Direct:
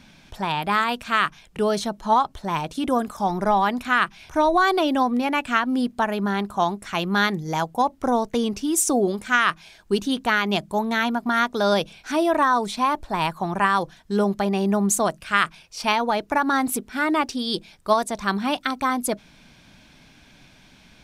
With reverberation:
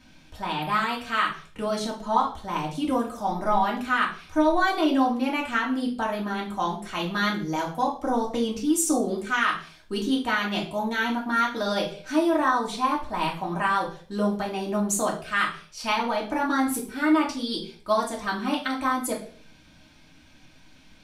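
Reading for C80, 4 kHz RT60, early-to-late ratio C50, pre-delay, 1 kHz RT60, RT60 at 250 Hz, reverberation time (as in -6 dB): 14.0 dB, 0.40 s, 8.5 dB, 3 ms, 0.40 s, 0.50 s, 0.45 s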